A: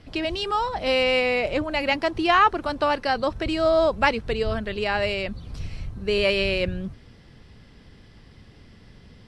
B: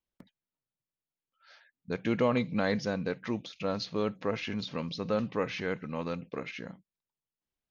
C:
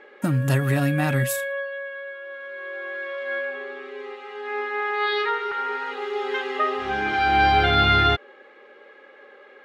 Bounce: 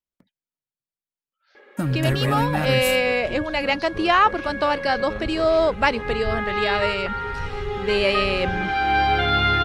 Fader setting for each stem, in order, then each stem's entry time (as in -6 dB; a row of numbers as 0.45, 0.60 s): +1.0, -5.5, -1.5 dB; 1.80, 0.00, 1.55 s